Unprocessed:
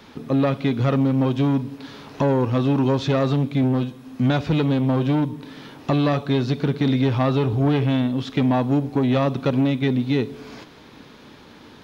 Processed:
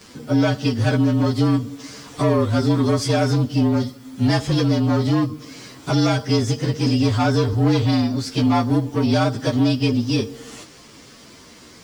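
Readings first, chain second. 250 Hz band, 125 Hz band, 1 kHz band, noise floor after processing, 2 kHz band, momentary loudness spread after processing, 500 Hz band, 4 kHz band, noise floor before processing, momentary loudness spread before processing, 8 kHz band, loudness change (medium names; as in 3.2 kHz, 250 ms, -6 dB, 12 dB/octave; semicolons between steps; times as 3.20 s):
+1.0 dB, +2.0 dB, +2.0 dB, -45 dBFS, +3.0 dB, 7 LU, +0.5 dB, +5.5 dB, -46 dBFS, 7 LU, no reading, +1.5 dB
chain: frequency axis rescaled in octaves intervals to 112%; treble shelf 3.5 kHz +11 dB; trim +2.5 dB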